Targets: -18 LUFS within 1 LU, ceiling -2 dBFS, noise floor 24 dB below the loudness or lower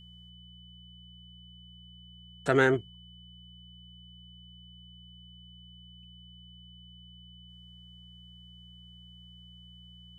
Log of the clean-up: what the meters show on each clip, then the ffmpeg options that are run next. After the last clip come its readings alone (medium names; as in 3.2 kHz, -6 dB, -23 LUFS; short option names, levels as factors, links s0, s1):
hum 60 Hz; highest harmonic 180 Hz; hum level -51 dBFS; steady tone 3 kHz; tone level -53 dBFS; loudness -26.5 LUFS; peak level -9.0 dBFS; loudness target -18.0 LUFS
-> -af "bandreject=f=60:t=h:w=4,bandreject=f=120:t=h:w=4,bandreject=f=180:t=h:w=4"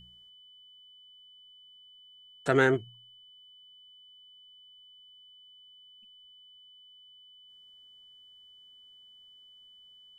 hum not found; steady tone 3 kHz; tone level -53 dBFS
-> -af "bandreject=f=3000:w=30"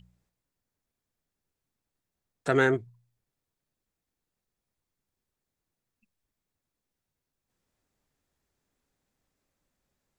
steady tone not found; loudness -26.5 LUFS; peak level -9.5 dBFS; loudness target -18.0 LUFS
-> -af "volume=2.66,alimiter=limit=0.794:level=0:latency=1"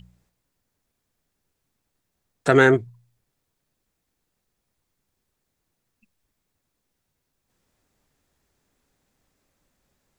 loudness -18.5 LUFS; peak level -2.0 dBFS; noise floor -79 dBFS